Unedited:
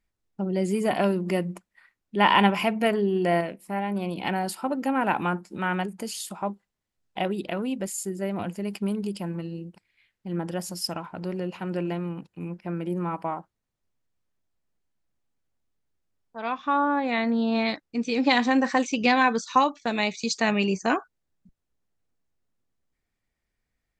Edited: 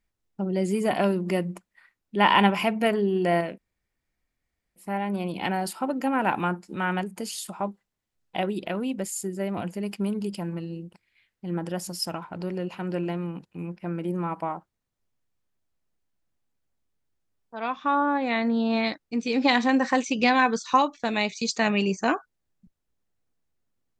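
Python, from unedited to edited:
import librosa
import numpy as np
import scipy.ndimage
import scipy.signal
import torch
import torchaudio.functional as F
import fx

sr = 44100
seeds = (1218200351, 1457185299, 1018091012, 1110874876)

y = fx.edit(x, sr, fx.insert_room_tone(at_s=3.58, length_s=1.18), tone=tone)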